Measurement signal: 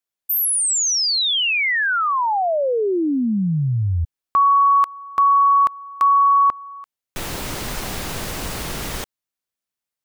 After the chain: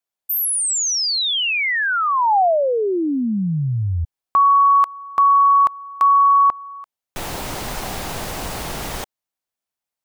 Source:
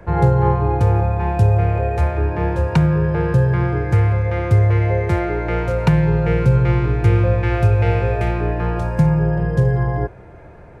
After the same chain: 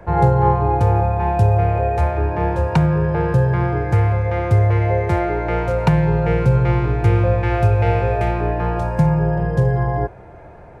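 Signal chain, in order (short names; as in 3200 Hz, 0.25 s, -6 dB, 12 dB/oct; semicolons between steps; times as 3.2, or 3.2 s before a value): bell 770 Hz +6 dB 0.84 oct; gain -1 dB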